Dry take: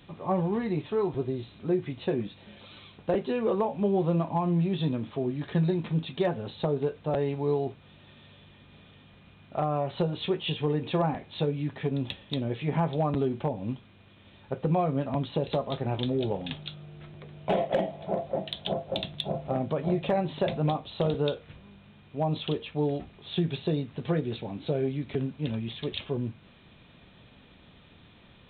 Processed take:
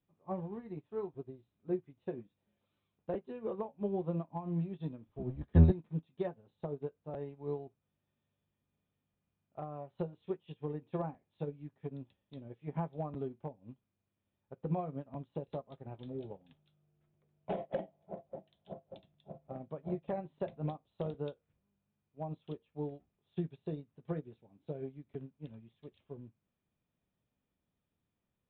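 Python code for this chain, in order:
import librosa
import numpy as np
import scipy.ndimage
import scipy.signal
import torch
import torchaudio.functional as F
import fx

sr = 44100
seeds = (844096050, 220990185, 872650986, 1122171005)

y = fx.octave_divider(x, sr, octaves=1, level_db=3.0, at=(5.06, 5.72))
y = fx.lowpass(y, sr, hz=1300.0, slope=6)
y = fx.upward_expand(y, sr, threshold_db=-38.0, expansion=2.5)
y = y * 10.0 ** (1.0 / 20.0)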